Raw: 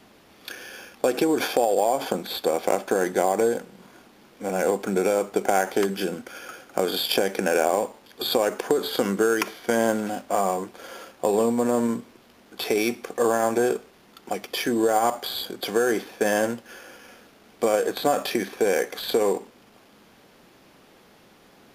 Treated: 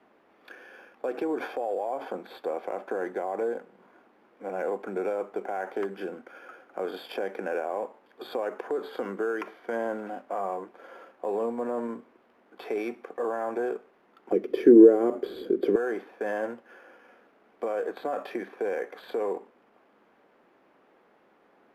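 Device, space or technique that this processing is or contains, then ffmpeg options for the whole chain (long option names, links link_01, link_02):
DJ mixer with the lows and highs turned down: -filter_complex "[0:a]acrossover=split=250 2200:gain=0.141 1 0.0891[link_01][link_02][link_03];[link_01][link_02][link_03]amix=inputs=3:normalize=0,alimiter=limit=-16dB:level=0:latency=1:release=13,asettb=1/sr,asplit=3[link_04][link_05][link_06];[link_04]atrim=end=14.324[link_07];[link_05]atrim=start=14.32:end=15.76,asetpts=PTS-STARTPTS,afade=type=in:duration=0.004:curve=qsin,afade=type=out:start_time=1.436:duration=0.004:curve=qsin,lowshelf=frequency=560:width_type=q:width=3:gain=12.5[link_08];[link_06]atrim=start=15.756[link_09];[link_07][link_08]acrossfade=duration=0.004:curve1=hsin:curve2=qsin[link_10];[link_10][link_09]acrossfade=duration=0.004:curve1=qsin:curve2=hsin,volume=-5.5dB"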